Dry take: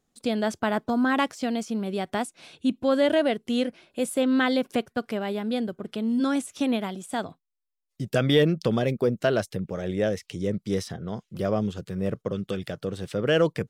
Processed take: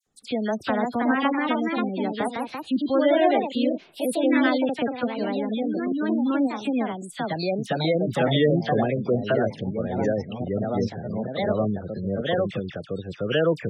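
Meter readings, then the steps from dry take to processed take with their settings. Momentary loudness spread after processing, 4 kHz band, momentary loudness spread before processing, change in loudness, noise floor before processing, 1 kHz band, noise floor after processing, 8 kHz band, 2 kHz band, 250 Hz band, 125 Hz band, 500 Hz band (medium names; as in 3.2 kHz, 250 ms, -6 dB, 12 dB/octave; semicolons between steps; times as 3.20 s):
9 LU, 0.0 dB, 10 LU, +2.0 dB, -80 dBFS, +4.0 dB, -45 dBFS, -5.0 dB, +1.5 dB, +2.0 dB, +1.0 dB, +2.0 dB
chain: phase dispersion lows, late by 67 ms, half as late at 2 kHz; ever faster or slower copies 397 ms, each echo +2 st, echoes 2; spectral gate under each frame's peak -25 dB strong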